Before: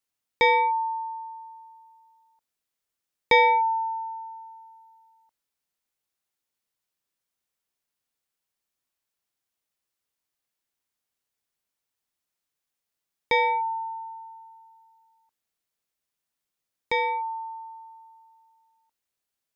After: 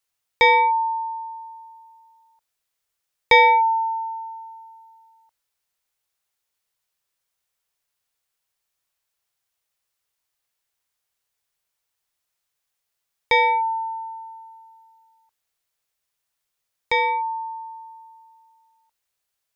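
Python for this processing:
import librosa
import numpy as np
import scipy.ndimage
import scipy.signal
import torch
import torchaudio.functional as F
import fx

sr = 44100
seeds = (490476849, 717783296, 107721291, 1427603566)

y = fx.peak_eq(x, sr, hz=250.0, db=-11.0, octaves=1.1)
y = y * librosa.db_to_amplitude(5.5)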